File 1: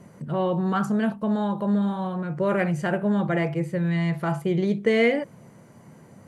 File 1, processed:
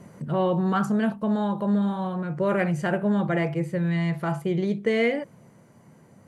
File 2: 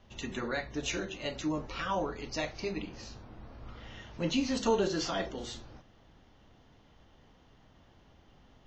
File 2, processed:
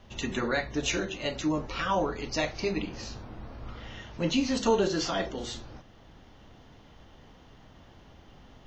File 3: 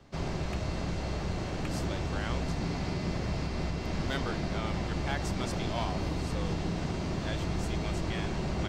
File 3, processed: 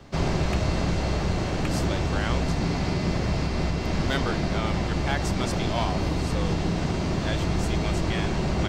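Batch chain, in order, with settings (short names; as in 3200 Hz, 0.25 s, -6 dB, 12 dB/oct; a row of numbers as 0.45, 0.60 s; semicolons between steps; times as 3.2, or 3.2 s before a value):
vocal rider within 4 dB 2 s; normalise peaks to -12 dBFS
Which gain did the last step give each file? -1.0, +3.5, +7.0 dB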